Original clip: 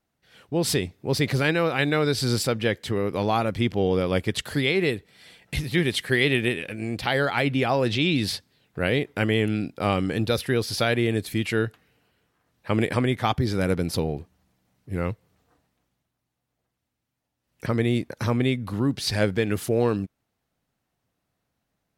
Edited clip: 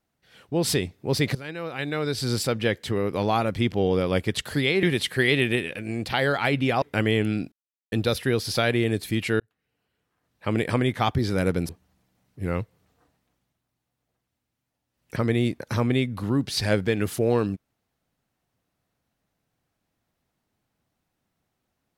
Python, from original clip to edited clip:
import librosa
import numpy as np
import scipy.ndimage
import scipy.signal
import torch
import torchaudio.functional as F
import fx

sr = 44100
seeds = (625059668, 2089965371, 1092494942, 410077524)

y = fx.edit(x, sr, fx.fade_in_from(start_s=1.35, length_s=1.26, floor_db=-18.5),
    fx.cut(start_s=4.83, length_s=0.93),
    fx.cut(start_s=7.75, length_s=1.3),
    fx.silence(start_s=9.75, length_s=0.4),
    fx.fade_in_span(start_s=11.63, length_s=1.39),
    fx.cut(start_s=13.92, length_s=0.27), tone=tone)